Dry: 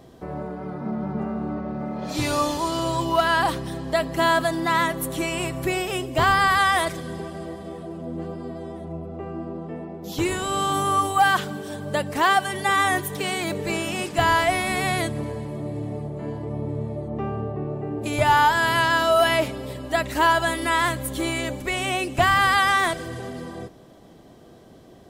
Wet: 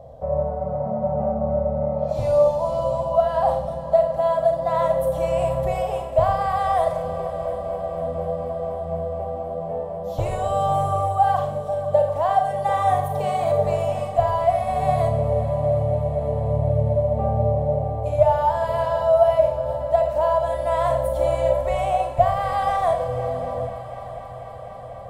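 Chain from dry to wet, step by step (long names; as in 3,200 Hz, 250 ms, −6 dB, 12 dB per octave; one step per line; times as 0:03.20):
drawn EQ curve 110 Hz 0 dB, 360 Hz −25 dB, 550 Hz +9 dB, 1,600 Hz −21 dB
speech leveller within 4 dB 0.5 s
on a send: echo machine with several playback heads 246 ms, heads second and third, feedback 73%, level −16.5 dB
on the sum: four-comb reverb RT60 0.57 s, combs from 28 ms, DRR 4 dB
level +3.5 dB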